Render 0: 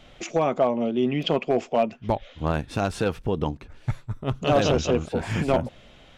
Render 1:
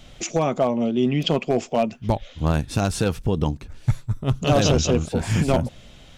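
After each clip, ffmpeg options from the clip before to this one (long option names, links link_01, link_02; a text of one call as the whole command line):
ffmpeg -i in.wav -af "bass=frequency=250:gain=7,treble=frequency=4000:gain=11" out.wav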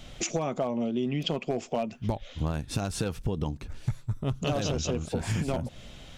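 ffmpeg -i in.wav -af "acompressor=threshold=-26dB:ratio=6" out.wav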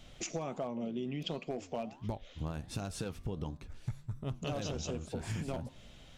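ffmpeg -i in.wav -af "flanger=delay=9.2:depth=9.3:regen=-87:speed=1.4:shape=sinusoidal,volume=-4dB" out.wav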